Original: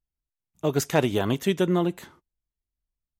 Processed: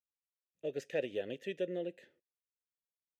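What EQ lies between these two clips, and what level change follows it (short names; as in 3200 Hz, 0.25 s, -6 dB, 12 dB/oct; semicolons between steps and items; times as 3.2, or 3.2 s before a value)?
vowel filter e; bell 1000 Hz -10.5 dB 2.2 oct; +2.5 dB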